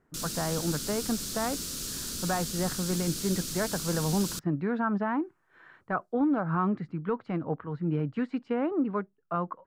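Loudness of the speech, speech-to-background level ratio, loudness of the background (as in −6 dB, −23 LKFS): −31.0 LKFS, 2.5 dB, −33.5 LKFS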